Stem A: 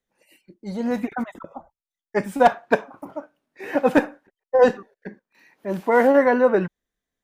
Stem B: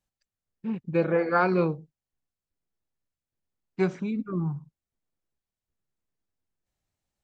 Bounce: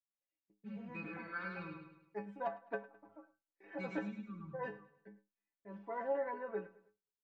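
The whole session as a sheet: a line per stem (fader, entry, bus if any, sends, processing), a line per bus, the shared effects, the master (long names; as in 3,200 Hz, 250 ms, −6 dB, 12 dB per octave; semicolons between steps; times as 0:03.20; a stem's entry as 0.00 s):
−11.5 dB, 0.00 s, no send, echo send −18.5 dB, low-pass filter 2,100 Hz 12 dB per octave
+1.5 dB, 0.00 s, no send, echo send −4 dB, drawn EQ curve 130 Hz 0 dB, 730 Hz −24 dB, 1,100 Hz −8 dB, 2,700 Hz −4 dB, 4,600 Hz −9 dB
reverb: not used
echo: repeating echo 105 ms, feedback 43%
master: noise gate −57 dBFS, range −19 dB; low-shelf EQ 120 Hz −10.5 dB; stiff-string resonator 100 Hz, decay 0.3 s, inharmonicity 0.008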